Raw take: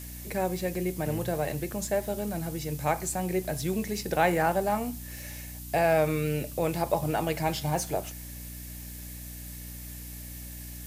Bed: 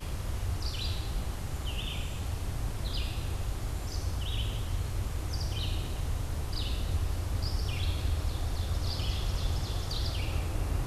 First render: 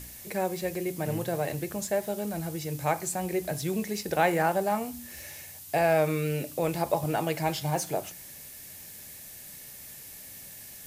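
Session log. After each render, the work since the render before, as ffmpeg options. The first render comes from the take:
-af "bandreject=f=60:t=h:w=4,bandreject=f=120:t=h:w=4,bandreject=f=180:t=h:w=4,bandreject=f=240:t=h:w=4,bandreject=f=300:t=h:w=4"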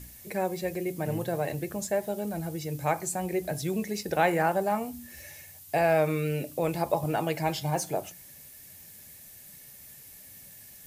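-af "afftdn=nr=6:nf=-46"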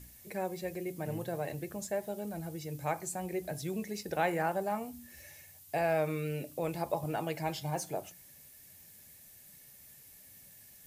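-af "volume=-6.5dB"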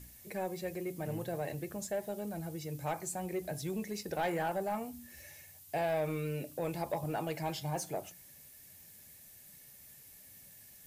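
-af "asoftclip=type=tanh:threshold=-26dB"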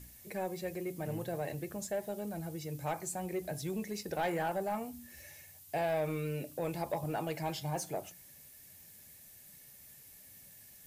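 -af anull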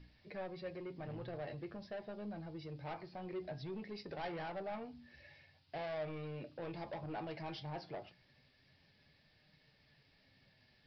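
-af "aresample=11025,asoftclip=type=tanh:threshold=-34dB,aresample=44100,flanger=delay=6.4:depth=3.1:regen=67:speed=0.21:shape=triangular"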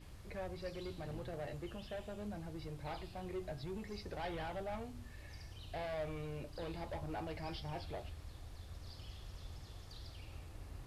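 -filter_complex "[1:a]volume=-19dB[a];[0:a][a]amix=inputs=2:normalize=0"

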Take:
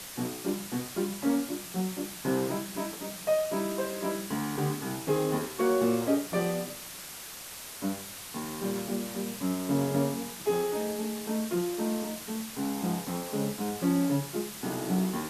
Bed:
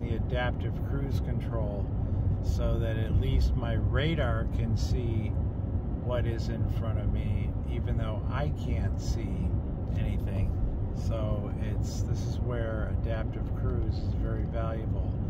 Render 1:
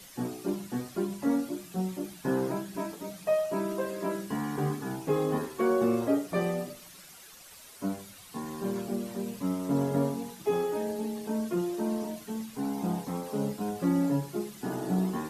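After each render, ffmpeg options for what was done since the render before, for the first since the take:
-af "afftdn=nr=11:nf=-43"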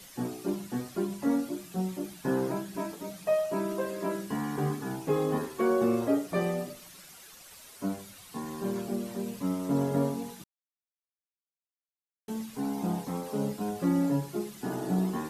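-filter_complex "[0:a]asplit=3[a][b][c];[a]atrim=end=10.44,asetpts=PTS-STARTPTS,afade=t=out:st=10.436:d=0.004:c=hsin[d];[b]atrim=start=10.44:end=12.28,asetpts=PTS-STARTPTS,volume=0[e];[c]atrim=start=12.28,asetpts=PTS-STARTPTS,afade=t=in:d=0.004:c=hsin[f];[d][e][f]concat=n=3:v=0:a=1"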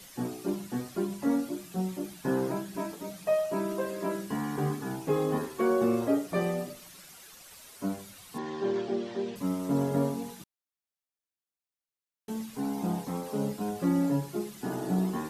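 -filter_complex "[0:a]asettb=1/sr,asplit=3[a][b][c];[a]atrim=end=8.384[d];[b]atrim=start=8.38:end=9.36,asetpts=PTS-STARTPTS,afade=t=in:d=0.004:c=qsin,afade=t=out:st=0.976:d=0.004:c=qsin,highpass=100,equalizer=f=190:t=q:w=4:g=-8,equalizer=f=380:t=q:w=4:g=7,equalizer=f=790:t=q:w=4:g=4,equalizer=f=1.8k:t=q:w=4:g=6,equalizer=f=3.3k:t=q:w=4:g=6,lowpass=f=5.6k:w=0.5412,lowpass=f=5.6k:w=1.3066[e];[c]atrim=start=9.356[f];[d][e]acrossfade=d=0.004:c1=hsin:c2=qsin[g];[g][f]acrossfade=d=0.004:c1=qsin:c2=hsin"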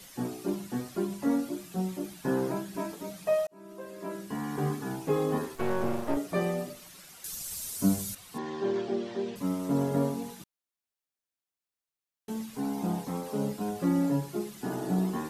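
-filter_complex "[0:a]asettb=1/sr,asplit=3[a][b][c];[a]atrim=end=5.554[d];[b]atrim=start=5.55:end=6.17,asetpts=PTS-STARTPTS,afade=t=in:d=0.004:c=qsin,afade=t=out:st=0.616:d=0.004:c=qsin,aeval=exprs='max(val(0),0)':c=same[e];[c]atrim=start=6.166[f];[d][e]acrossfade=d=0.004:c1=hsin:c2=qsin[g];[g][f]acrossfade=d=0.004:c1=qsin:c2=hsin,asettb=1/sr,asplit=3[h][i][j];[h]atrim=end=7.244[k];[i]atrim=start=7.24:end=8.15,asetpts=PTS-STARTPTS,afade=t=in:d=0.004:c=qsin,afade=t=out:st=0.906:d=0.004:c=qsin,bass=f=250:g=13,treble=f=4k:g=15[l];[j]atrim=start=8.146[m];[k][l]acrossfade=d=0.004:c1=hsin:c2=qsin[n];[n][m]acrossfade=d=0.004:c1=qsin:c2=hsin,asplit=2[o][p];[o]atrim=end=3.47,asetpts=PTS-STARTPTS,afade=t=out:st=3.466:d=0.004:c=hsin[q];[p]atrim=start=3.47,asetpts=PTS-STARTPTS,afade=t=in:d=1.19[r];[q][r]concat=n=2:v=0:a=1"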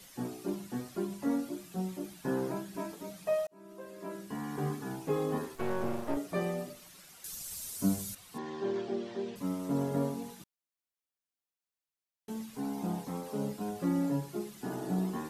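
-af "volume=-4dB"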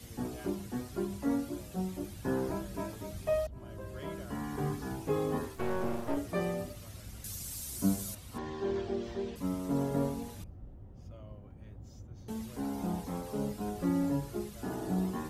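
-filter_complex "[1:a]volume=-18.5dB[a];[0:a][a]amix=inputs=2:normalize=0"

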